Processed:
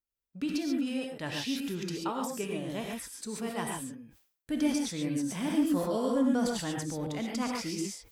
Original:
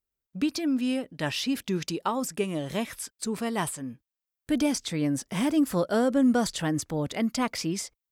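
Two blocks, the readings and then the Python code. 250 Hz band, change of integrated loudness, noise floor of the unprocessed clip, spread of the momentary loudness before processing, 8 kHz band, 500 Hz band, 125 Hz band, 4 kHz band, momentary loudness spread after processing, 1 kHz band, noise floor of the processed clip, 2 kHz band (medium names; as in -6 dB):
-4.0 dB, -4.0 dB, under -85 dBFS, 8 LU, -4.5 dB, -4.5 dB, -5.5 dB, -4.5 dB, 9 LU, -5.0 dB, under -85 dBFS, -5.0 dB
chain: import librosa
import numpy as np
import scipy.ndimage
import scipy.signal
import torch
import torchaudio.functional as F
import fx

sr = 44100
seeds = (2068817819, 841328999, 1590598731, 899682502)

y = fx.spec_repair(x, sr, seeds[0], start_s=5.81, length_s=0.31, low_hz=690.0, high_hz=2800.0, source='before')
y = fx.rev_gated(y, sr, seeds[1], gate_ms=160, shape='rising', drr_db=0.0)
y = fx.sustainer(y, sr, db_per_s=110.0)
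y = y * librosa.db_to_amplitude(-8.0)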